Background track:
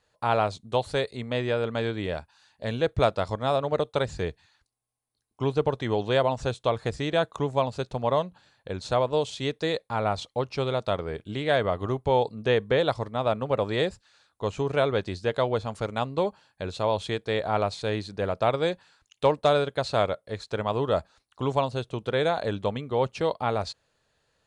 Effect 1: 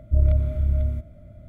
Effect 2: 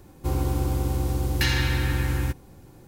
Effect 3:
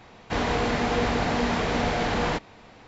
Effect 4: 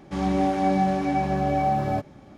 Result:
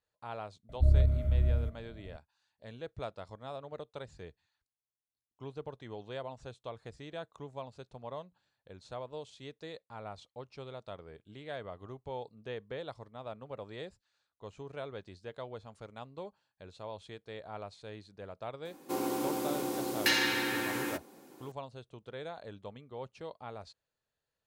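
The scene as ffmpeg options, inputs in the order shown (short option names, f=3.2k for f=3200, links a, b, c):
-filter_complex "[0:a]volume=-18dB[a];[2:a]highpass=f=240:w=0.5412,highpass=f=240:w=1.3066[b];[1:a]atrim=end=1.48,asetpts=PTS-STARTPTS,volume=-5.5dB,afade=t=in:d=0.004:c=hsin,afade=t=out:st=1.476:d=0.004:c=hsin,adelay=690[c];[b]atrim=end=2.87,asetpts=PTS-STARTPTS,volume=-1.5dB,afade=t=in:d=0.004:c=hsin,afade=t=out:st=2.866:d=0.004:c=hsin,adelay=18650[d];[a][c][d]amix=inputs=3:normalize=0"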